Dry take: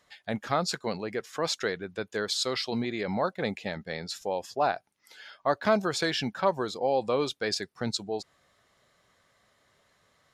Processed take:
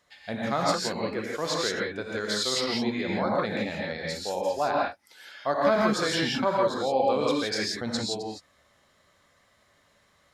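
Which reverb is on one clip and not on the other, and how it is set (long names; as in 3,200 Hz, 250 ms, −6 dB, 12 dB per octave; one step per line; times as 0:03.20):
reverb whose tail is shaped and stops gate 190 ms rising, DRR −3.5 dB
level −2 dB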